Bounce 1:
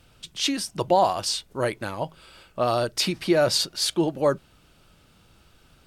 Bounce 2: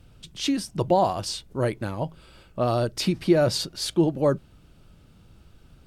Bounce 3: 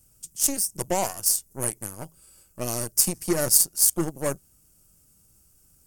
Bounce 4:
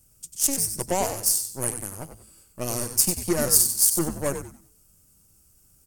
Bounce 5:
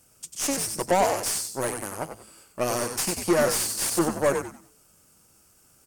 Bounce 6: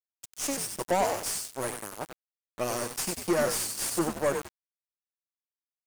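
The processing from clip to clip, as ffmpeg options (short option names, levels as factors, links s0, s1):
-af "lowshelf=f=420:g=12,volume=0.562"
-af "aeval=exprs='0.422*(cos(1*acos(clip(val(0)/0.422,-1,1)))-cos(1*PI/2))+0.0335*(cos(7*acos(clip(val(0)/0.422,-1,1)))-cos(7*PI/2))+0.0376*(cos(8*acos(clip(val(0)/0.422,-1,1)))-cos(8*PI/2))':c=same,aexciter=amount=12.3:drive=8.7:freq=5800,volume=0.501"
-filter_complex "[0:a]asplit=5[s0][s1][s2][s3][s4];[s1]adelay=94,afreqshift=-110,volume=0.398[s5];[s2]adelay=188,afreqshift=-220,volume=0.123[s6];[s3]adelay=282,afreqshift=-330,volume=0.0385[s7];[s4]adelay=376,afreqshift=-440,volume=0.0119[s8];[s0][s5][s6][s7][s8]amix=inputs=5:normalize=0"
-filter_complex "[0:a]asplit=2[s0][s1];[s1]highpass=f=720:p=1,volume=17.8,asoftclip=type=tanh:threshold=0.841[s2];[s0][s2]amix=inputs=2:normalize=0,lowpass=f=2100:p=1,volume=0.501,volume=0.473"
-af "aeval=exprs='val(0)*gte(abs(val(0)),0.0266)':c=same,volume=0.596"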